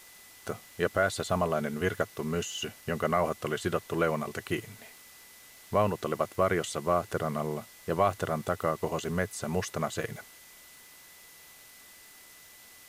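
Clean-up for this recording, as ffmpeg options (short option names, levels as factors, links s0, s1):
-af "adeclick=t=4,bandreject=f=2000:w=30,afwtdn=0.0025"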